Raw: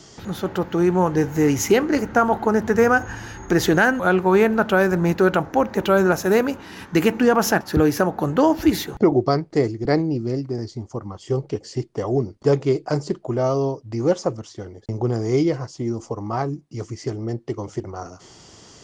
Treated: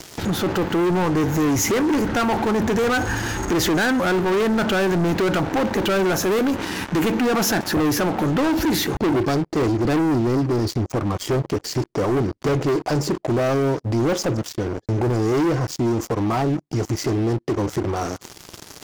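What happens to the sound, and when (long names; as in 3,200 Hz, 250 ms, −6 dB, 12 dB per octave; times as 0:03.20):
0:09.60–0:11.42: clip gain +3 dB
whole clip: parametric band 310 Hz +4 dB 0.45 octaves; leveller curve on the samples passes 5; brickwall limiter −13.5 dBFS; level −3 dB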